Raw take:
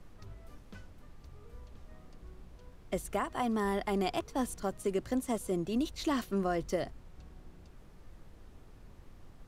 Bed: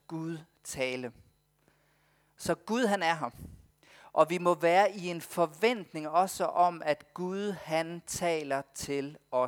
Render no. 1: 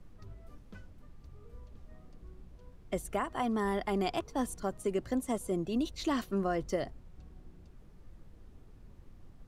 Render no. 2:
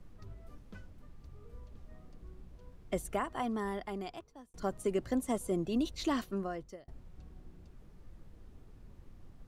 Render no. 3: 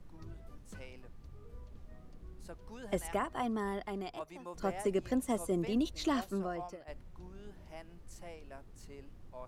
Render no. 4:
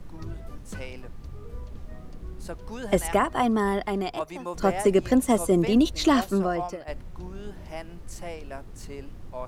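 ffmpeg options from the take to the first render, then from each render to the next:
ffmpeg -i in.wav -af "afftdn=noise_reduction=6:noise_floor=-55" out.wav
ffmpeg -i in.wav -filter_complex "[0:a]asplit=3[link_01][link_02][link_03];[link_01]atrim=end=4.54,asetpts=PTS-STARTPTS,afade=type=out:start_time=3.02:duration=1.52[link_04];[link_02]atrim=start=4.54:end=6.88,asetpts=PTS-STARTPTS,afade=type=in:duration=0.004:curve=hsin,afade=type=out:start_time=1.51:duration=0.83[link_05];[link_03]atrim=start=6.88,asetpts=PTS-STARTPTS,afade=type=in:duration=0.004:curve=hsin[link_06];[link_04][link_05][link_06]concat=n=3:v=0:a=1" out.wav
ffmpeg -i in.wav -i bed.wav -filter_complex "[1:a]volume=-20dB[link_01];[0:a][link_01]amix=inputs=2:normalize=0" out.wav
ffmpeg -i in.wav -af "volume=12dB" out.wav

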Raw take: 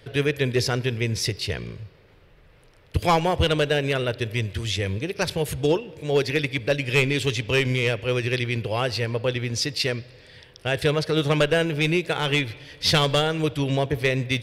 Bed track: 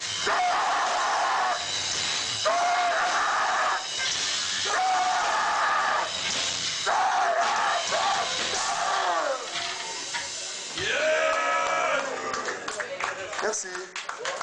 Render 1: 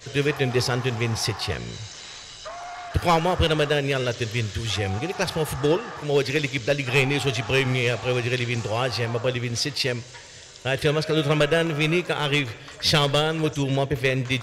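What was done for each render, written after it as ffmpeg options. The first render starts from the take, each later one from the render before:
ffmpeg -i in.wav -i bed.wav -filter_complex "[1:a]volume=-12.5dB[link_01];[0:a][link_01]amix=inputs=2:normalize=0" out.wav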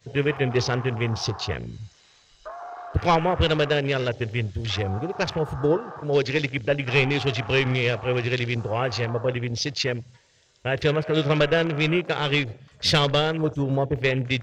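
ffmpeg -i in.wav -af "afwtdn=0.0251,equalizer=frequency=11000:width_type=o:width=0.48:gain=-12.5" out.wav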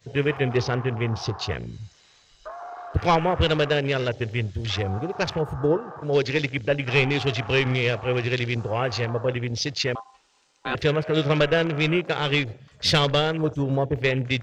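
ffmpeg -i in.wav -filter_complex "[0:a]asettb=1/sr,asplit=3[link_01][link_02][link_03];[link_01]atrim=end=0.574[link_04];[link_02]atrim=start=0.57:end=1.41,asetpts=PTS-STARTPTS,afade=type=in:duration=0.004:curve=qsin,afade=type=out:start_time=0.836:duration=0.004:curve=qsin,highshelf=frequency=3800:gain=-8[link_05];[link_03]atrim=start=1.406[link_06];[link_04][link_05]acrossfade=duration=0.004:curve1=hsin:curve2=qsin[link_07];[link_07][link_06]acrossfade=duration=0.004:curve1=qsin:curve2=hsin,asettb=1/sr,asplit=3[link_08][link_09][link_10];[link_08]atrim=end=5.414[link_11];[link_09]atrim=start=5.41:end=6.02,asetpts=PTS-STARTPTS,afade=type=in:duration=0.004:curve=qsin,afade=type=out:start_time=0.606:duration=0.004:curve=qsin,equalizer=frequency=4200:width=0.56:gain=-6.5[link_12];[link_10]atrim=start=6.016[link_13];[link_11][link_12]acrossfade=duration=0.004:curve1=hsin:curve2=qsin[link_14];[link_14][link_13]acrossfade=duration=0.004:curve1=qsin:curve2=hsin,asettb=1/sr,asplit=3[link_15][link_16][link_17];[link_15]atrim=end=9.954[link_18];[link_16]atrim=start=9.95:end=10.75,asetpts=PTS-STARTPTS,afade=type=in:duration=0.004:curve=qsin,afade=type=out:start_time=0.796:duration=0.004:curve=qsin,aeval=exprs='val(0)*sin(2*PI*910*n/s)':channel_layout=same[link_19];[link_17]atrim=start=10.746[link_20];[link_18][link_19]acrossfade=duration=0.004:curve1=hsin:curve2=qsin[link_21];[link_21][link_20]acrossfade=duration=0.004:curve1=qsin:curve2=hsin" out.wav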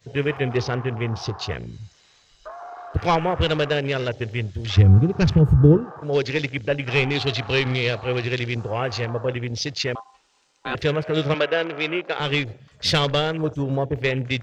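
ffmpeg -i in.wav -filter_complex "[0:a]asplit=3[link_01][link_02][link_03];[link_01]afade=type=out:start_time=4.76:duration=0.02[link_04];[link_02]asubboost=boost=11:cutoff=230,afade=type=in:start_time=4.76:duration=0.02,afade=type=out:start_time=5.84:duration=0.02[link_05];[link_03]afade=type=in:start_time=5.84:duration=0.02[link_06];[link_04][link_05][link_06]amix=inputs=3:normalize=0,asettb=1/sr,asplit=3[link_07][link_08][link_09];[link_07]atrim=end=7.154[link_10];[link_08]atrim=start=7.15:end=8.25,asetpts=PTS-STARTPTS,afade=type=in:duration=0.004:curve=qsin,afade=type=out:start_time=1.096:duration=0.004:curve=qsin,equalizer=frequency=4100:width_type=o:width=0.32:gain=10.5[link_11];[link_09]atrim=start=8.246[link_12];[link_10][link_11]acrossfade=duration=0.004:curve1=hsin:curve2=qsin[link_13];[link_13][link_12]acrossfade=duration=0.004:curve1=qsin:curve2=hsin,asettb=1/sr,asplit=3[link_14][link_15][link_16];[link_14]atrim=end=11.344[link_17];[link_15]atrim=start=11.34:end=12.2,asetpts=PTS-STARTPTS,afade=type=in:duration=0.004:curve=qsin,afade=type=out:start_time=0.856:duration=0.004:curve=qsin,highpass=340,lowpass=4800[link_18];[link_16]atrim=start=12.196[link_19];[link_17][link_18]acrossfade=duration=0.004:curve1=hsin:curve2=qsin[link_20];[link_20][link_19]acrossfade=duration=0.004:curve1=qsin:curve2=hsin" out.wav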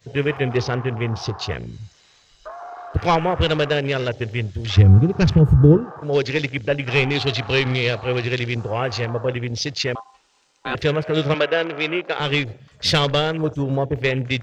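ffmpeg -i in.wav -af "volume=2dB,alimiter=limit=-2dB:level=0:latency=1" out.wav

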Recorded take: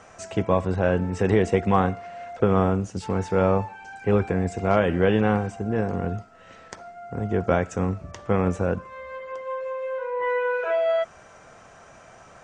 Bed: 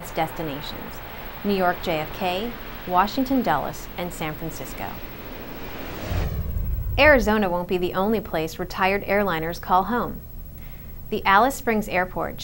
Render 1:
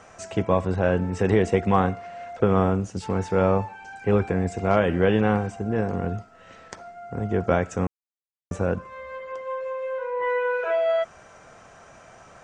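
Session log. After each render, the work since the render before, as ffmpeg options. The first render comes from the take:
ffmpeg -i in.wav -filter_complex "[0:a]asplit=3[link_01][link_02][link_03];[link_01]atrim=end=7.87,asetpts=PTS-STARTPTS,afade=type=out:start_time=7.866:duration=0.004:curve=hsin[link_04];[link_02]atrim=start=7.87:end=8.51,asetpts=PTS-STARTPTS,volume=0[link_05];[link_03]atrim=start=8.51,asetpts=PTS-STARTPTS,afade=type=in:duration=0.004:curve=hsin[link_06];[link_04][link_05][link_06]concat=n=3:v=0:a=1" out.wav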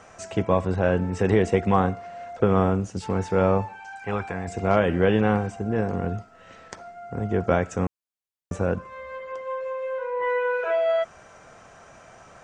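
ffmpeg -i in.wav -filter_complex "[0:a]asettb=1/sr,asplit=3[link_01][link_02][link_03];[link_01]atrim=end=1.744[link_04];[link_02]atrim=start=1.74:end=2.41,asetpts=PTS-STARTPTS,afade=type=in:duration=0.004:curve=qsin,afade=type=out:start_time=0.666:duration=0.004:curve=qsin,equalizer=frequency=2400:width=1.2:gain=-3.5[link_05];[link_03]atrim=start=2.406[link_06];[link_04][link_05]acrossfade=duration=0.004:curve1=hsin:curve2=qsin[link_07];[link_07][link_06]acrossfade=duration=0.004:curve1=qsin:curve2=hsin,asettb=1/sr,asplit=3[link_08][link_09][link_10];[link_08]atrim=end=3.804[link_11];[link_09]atrim=start=3.8:end=4.48,asetpts=PTS-STARTPTS,afade=type=in:duration=0.004:curve=qsin,afade=type=out:start_time=0.676:duration=0.004:curve=qsin,lowshelf=frequency=590:width_type=q:width=1.5:gain=-8[link_12];[link_10]atrim=start=4.476[link_13];[link_11][link_12]acrossfade=duration=0.004:curve1=hsin:curve2=qsin[link_14];[link_14][link_13]acrossfade=duration=0.004:curve1=qsin:curve2=hsin" out.wav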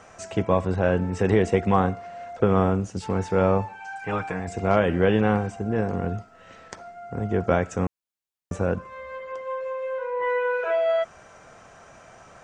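ffmpeg -i in.wav -filter_complex "[0:a]asettb=1/sr,asplit=3[link_01][link_02][link_03];[link_01]atrim=end=3.804[link_04];[link_02]atrim=start=3.8:end=4.4,asetpts=PTS-STARTPTS,afade=type=in:duration=0.004:curve=qsin,afade=type=out:start_time=0.596:duration=0.004:curve=qsin,aecho=1:1:6.5:0.65,atrim=end_sample=26460[link_05];[link_03]atrim=start=4.396[link_06];[link_04][link_05]acrossfade=duration=0.004:curve1=hsin:curve2=qsin[link_07];[link_07][link_06]acrossfade=duration=0.004:curve1=qsin:curve2=hsin" out.wav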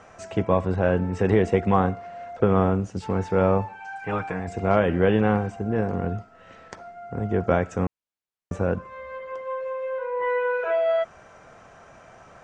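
ffmpeg -i in.wav -af "aemphasis=mode=reproduction:type=cd" out.wav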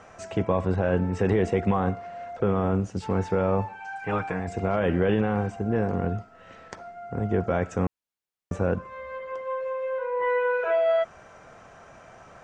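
ffmpeg -i in.wav -af "alimiter=limit=-13.5dB:level=0:latency=1:release=14" out.wav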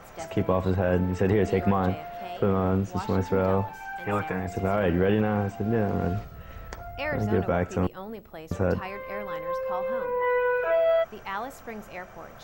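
ffmpeg -i in.wav -i bed.wav -filter_complex "[1:a]volume=-16.5dB[link_01];[0:a][link_01]amix=inputs=2:normalize=0" out.wav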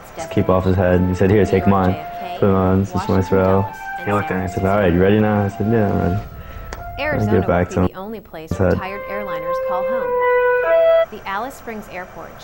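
ffmpeg -i in.wav -af "volume=9dB" out.wav

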